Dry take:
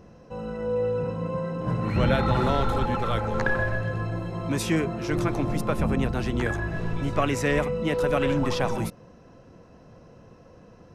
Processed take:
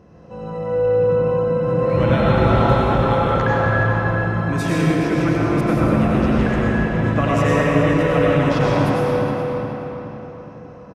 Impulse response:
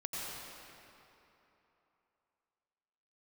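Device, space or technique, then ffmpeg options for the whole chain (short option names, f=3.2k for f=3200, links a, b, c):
swimming-pool hall: -filter_complex "[0:a]highpass=50[a];[1:a]atrim=start_sample=2205[b];[a][b]afir=irnorm=-1:irlink=0,highshelf=f=4k:g=-7.5,asplit=2[c][d];[d]adelay=417,lowpass=f=3.6k:p=1,volume=-5.5dB,asplit=2[e][f];[f]adelay=417,lowpass=f=3.6k:p=1,volume=0.46,asplit=2[g][h];[h]adelay=417,lowpass=f=3.6k:p=1,volume=0.46,asplit=2[i][j];[j]adelay=417,lowpass=f=3.6k:p=1,volume=0.46,asplit=2[k][l];[l]adelay=417,lowpass=f=3.6k:p=1,volume=0.46,asplit=2[m][n];[n]adelay=417,lowpass=f=3.6k:p=1,volume=0.46[o];[c][e][g][i][k][m][o]amix=inputs=7:normalize=0,volume=5dB"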